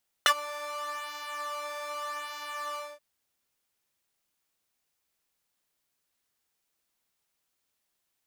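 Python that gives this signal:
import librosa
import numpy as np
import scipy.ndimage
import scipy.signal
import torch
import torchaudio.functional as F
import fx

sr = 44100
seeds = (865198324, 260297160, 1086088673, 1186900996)

y = fx.sub_patch_pwm(sr, seeds[0], note=74, wave2='saw', interval_st=-12, detune_cents=23, level2_db=-6.0, sub_db=-15.0, noise_db=-30.0, kind='highpass', cutoff_hz=710.0, q=2.7, env_oct=2.0, env_decay_s=0.05, env_sustain_pct=20, attack_ms=1.4, decay_s=0.07, sustain_db=-21.5, release_s=0.23, note_s=2.5, lfo_hz=0.83, width_pct=24, width_swing_pct=18)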